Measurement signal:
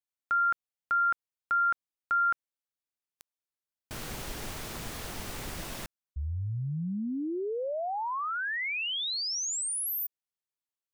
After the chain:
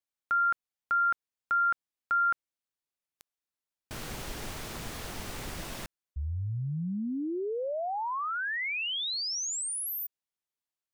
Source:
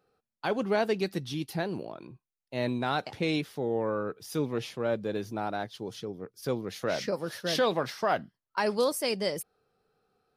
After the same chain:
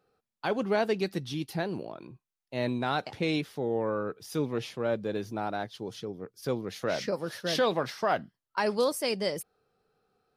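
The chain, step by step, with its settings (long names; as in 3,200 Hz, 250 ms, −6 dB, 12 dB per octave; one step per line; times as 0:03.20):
high-shelf EQ 10,000 Hz −3.5 dB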